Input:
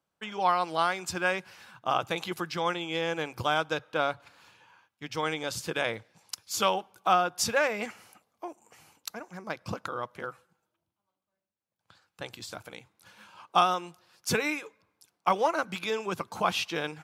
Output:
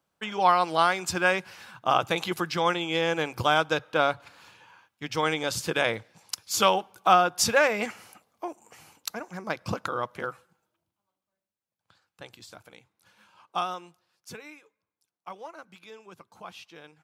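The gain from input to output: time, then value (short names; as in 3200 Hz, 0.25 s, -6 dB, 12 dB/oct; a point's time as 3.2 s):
10.22 s +4.5 dB
12.51 s -6.5 dB
13.83 s -6.5 dB
14.38 s -16 dB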